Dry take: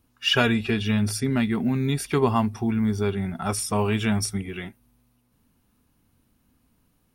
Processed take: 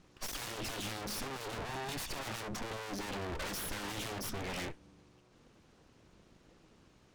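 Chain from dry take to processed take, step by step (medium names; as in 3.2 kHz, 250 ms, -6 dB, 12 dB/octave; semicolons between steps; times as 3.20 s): 1.61–2.09 s: comb filter that takes the minimum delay 1.1 ms; steep low-pass 7.3 kHz; full-wave rectifier; valve stage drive 33 dB, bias 0.4; trim +9 dB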